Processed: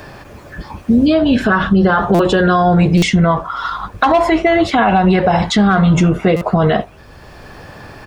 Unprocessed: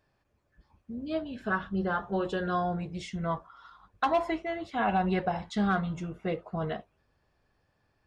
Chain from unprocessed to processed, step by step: compressor, threshold -31 dBFS, peak gain reduction 9.5 dB; speakerphone echo 80 ms, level -29 dB; stuck buffer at 2.14/2.97/6.36, samples 256, times 8; maximiser +31 dB; three-band squash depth 40%; gain -3.5 dB

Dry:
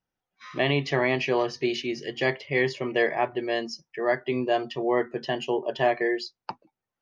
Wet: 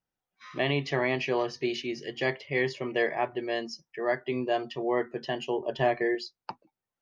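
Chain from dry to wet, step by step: 5.6–6.15 low shelf 180 Hz +10 dB; gain -3.5 dB

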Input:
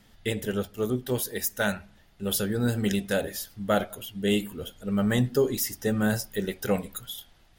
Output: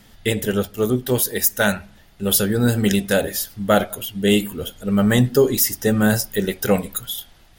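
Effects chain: high shelf 8100 Hz +4.5 dB; gain +8 dB

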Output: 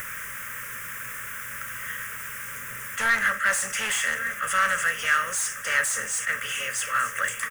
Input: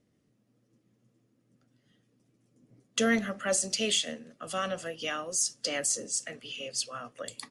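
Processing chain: per-bin compression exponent 0.6; high shelf 5600 Hz +6 dB; on a send: feedback echo 1.149 s, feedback 41%, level -18 dB; on the sum: requantised 8-bit, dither triangular; in parallel at -1 dB: upward compressor, threshold -27 dBFS; on the sum: fixed phaser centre 1800 Hz, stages 4; soft clip -24 dBFS, distortion -8 dB; EQ curve 110 Hz 0 dB, 290 Hz -21 dB, 550 Hz -1 dB, 1600 Hz +13 dB, 3100 Hz 0 dB; attack slew limiter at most 190 dB/s

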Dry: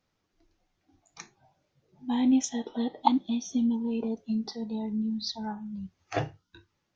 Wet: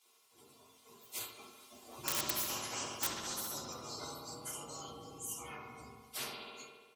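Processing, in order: inharmonic rescaling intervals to 122%; Doppler pass-by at 2.23, 8 m/s, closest 5.5 m; spectral gate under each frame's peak -15 dB weak; HPF 610 Hz 6 dB/oct; bell 1700 Hz -14 dB 0.48 oct; comb 2.9 ms, depth 75%; in parallel at -3.5 dB: wrapped overs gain 35 dB; on the sum: analogue delay 68 ms, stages 2048, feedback 72%, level -13 dB; on a send at -1 dB: reverb RT60 0.30 s, pre-delay 3 ms; on the sum: spectral compressor 4:1; gain +12 dB

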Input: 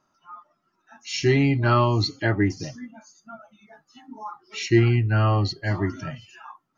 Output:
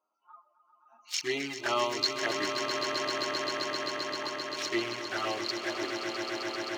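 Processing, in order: Wiener smoothing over 25 samples; HPF 470 Hz 12 dB/oct; tilt +2.5 dB/oct; envelope flanger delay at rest 9.5 ms, full sweep at -22.5 dBFS; swelling echo 0.131 s, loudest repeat 8, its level -9 dB; gain -1.5 dB

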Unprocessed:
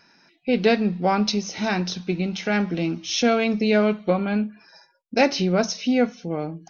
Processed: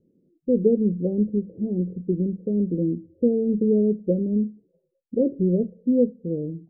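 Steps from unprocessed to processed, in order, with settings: Chebyshev low-pass 520 Hz, order 6; gain +1.5 dB

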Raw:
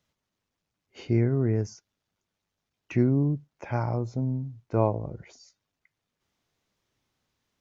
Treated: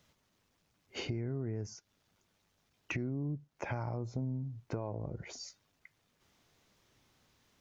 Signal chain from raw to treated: limiter -20.5 dBFS, peak gain reduction 11.5 dB; compressor 4:1, threshold -45 dBFS, peak gain reduction 17 dB; gain +8 dB

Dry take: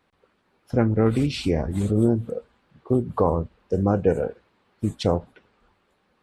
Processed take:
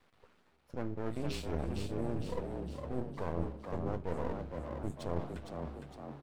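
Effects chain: de-hum 136.5 Hz, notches 29; on a send at -23.5 dB: reverb RT60 2.6 s, pre-delay 4 ms; on the sum: half-wave rectifier; reverse; compressor 6:1, threshold -36 dBFS, peak gain reduction 19.5 dB; reverse; doubler 12 ms -12 dB; frequency-shifting echo 0.459 s, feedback 53%, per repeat +70 Hz, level -5.5 dB; gain +2 dB

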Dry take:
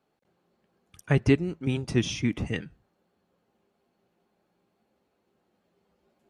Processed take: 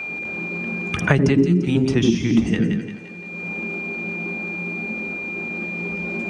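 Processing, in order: LPF 8100 Hz 24 dB/oct; high shelf 2800 Hz +7 dB; transient shaper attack +1 dB, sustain +7 dB; thinning echo 0.172 s, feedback 25%, high-pass 410 Hz, level -10 dB; whine 2400 Hz -56 dBFS; on a send at -8.5 dB: reverb, pre-delay 78 ms; on the sum: three-band squash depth 100%; gain +2 dB

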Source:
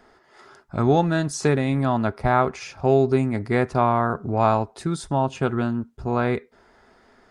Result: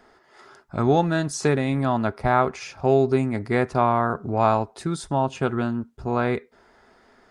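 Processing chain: low shelf 180 Hz -3 dB

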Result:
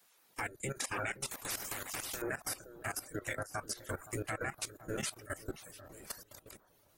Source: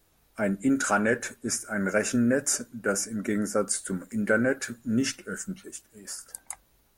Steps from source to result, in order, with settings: spectral gate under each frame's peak -15 dB weak; reverb removal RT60 0.53 s; compressor 6:1, threshold -44 dBFS, peak gain reduction 12.5 dB; analogue delay 0.518 s, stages 4096, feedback 53%, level -8 dB; level quantiser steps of 16 dB; 1.31–2.22 spectral compressor 4:1; gain +11.5 dB

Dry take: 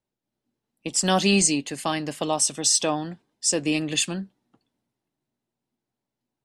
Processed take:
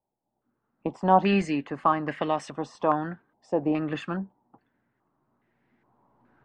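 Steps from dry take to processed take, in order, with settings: recorder AGC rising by 9.9 dB/s; stepped low-pass 2.4 Hz 820–1900 Hz; gain -2.5 dB

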